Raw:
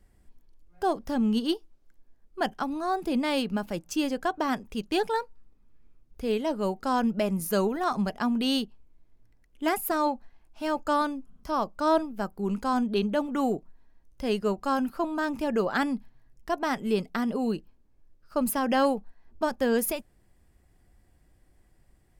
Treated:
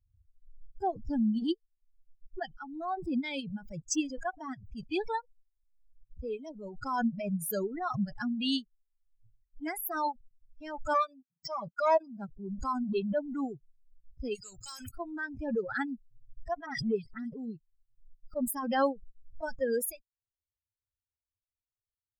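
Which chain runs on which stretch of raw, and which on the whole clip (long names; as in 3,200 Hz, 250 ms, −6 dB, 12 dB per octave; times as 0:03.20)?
0:10.94–0:12.29: phase distortion by the signal itself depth 0.058 ms + high-pass filter 120 Hz 24 dB per octave + comb filter 5.1 ms, depth 69%
0:14.35–0:14.89: notch filter 280 Hz, Q 6.8 + every bin compressed towards the loudest bin 2 to 1
0:16.66–0:17.37: notch filter 6,400 Hz, Q 5.1 + all-pass dispersion highs, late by 65 ms, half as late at 2,900 Hz
whole clip: spectral dynamics exaggerated over time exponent 3; background raised ahead of every attack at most 56 dB per second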